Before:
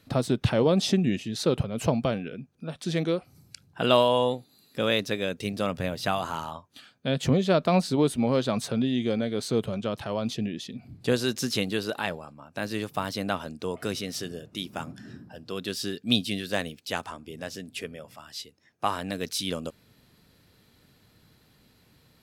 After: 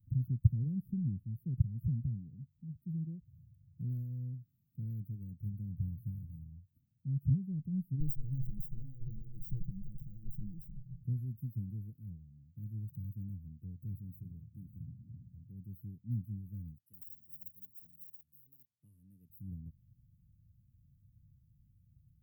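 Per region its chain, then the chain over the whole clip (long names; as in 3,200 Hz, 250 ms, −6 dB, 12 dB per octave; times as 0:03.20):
0:08.00–0:11.03: lower of the sound and its delayed copy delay 6.1 ms + comb filter 6.3 ms, depth 73%
0:16.78–0:19.30: meter weighting curve ITU-R 468 + delay with pitch and tempo change per echo 97 ms, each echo +6 semitones, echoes 3, each echo −6 dB
whole clip: inverse Chebyshev band-stop filter 700–7,100 Hz, stop band 80 dB; low-shelf EQ 420 Hz −8.5 dB; level +9.5 dB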